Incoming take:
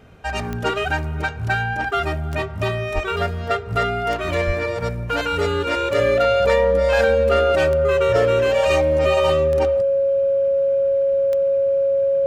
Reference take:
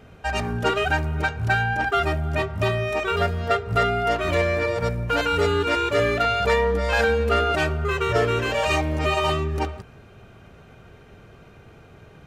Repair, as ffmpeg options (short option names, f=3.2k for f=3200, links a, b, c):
-filter_complex "[0:a]adeclick=t=4,bandreject=f=550:w=30,asplit=3[a][b][c];[a]afade=t=out:st=2.94:d=0.02[d];[b]highpass=f=140:w=0.5412,highpass=f=140:w=1.3066,afade=t=in:st=2.94:d=0.02,afade=t=out:st=3.06:d=0.02[e];[c]afade=t=in:st=3.06:d=0.02[f];[d][e][f]amix=inputs=3:normalize=0,asplit=3[g][h][i];[g]afade=t=out:st=4.46:d=0.02[j];[h]highpass=f=140:w=0.5412,highpass=f=140:w=1.3066,afade=t=in:st=4.46:d=0.02,afade=t=out:st=4.58:d=0.02[k];[i]afade=t=in:st=4.58:d=0.02[l];[j][k][l]amix=inputs=3:normalize=0"